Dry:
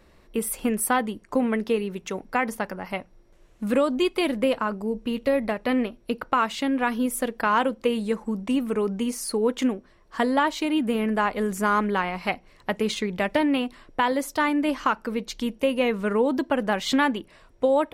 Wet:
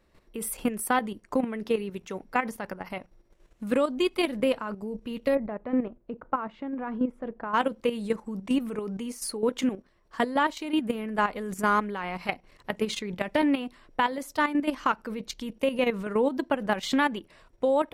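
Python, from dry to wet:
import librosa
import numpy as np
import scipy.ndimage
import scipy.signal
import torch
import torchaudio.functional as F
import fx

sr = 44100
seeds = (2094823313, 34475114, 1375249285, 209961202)

y = fx.lowpass(x, sr, hz=1200.0, slope=12, at=(5.34, 7.53), fade=0.02)
y = fx.level_steps(y, sr, step_db=11)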